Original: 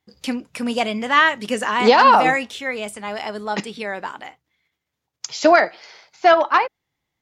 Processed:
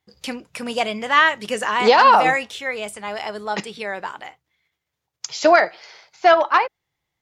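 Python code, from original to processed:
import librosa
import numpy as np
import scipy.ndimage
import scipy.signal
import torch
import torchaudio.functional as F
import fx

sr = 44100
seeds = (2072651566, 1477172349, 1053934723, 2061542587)

y = fx.peak_eq(x, sr, hz=250.0, db=-7.5, octaves=0.57)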